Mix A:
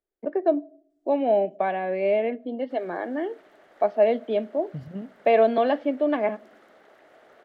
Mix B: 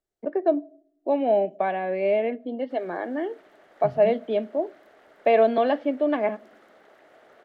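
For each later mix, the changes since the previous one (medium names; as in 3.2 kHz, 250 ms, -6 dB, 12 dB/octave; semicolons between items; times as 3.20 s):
second voice: entry -0.90 s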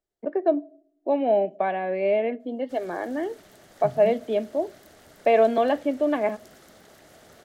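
background: remove three-band isolator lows -20 dB, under 300 Hz, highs -20 dB, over 2.8 kHz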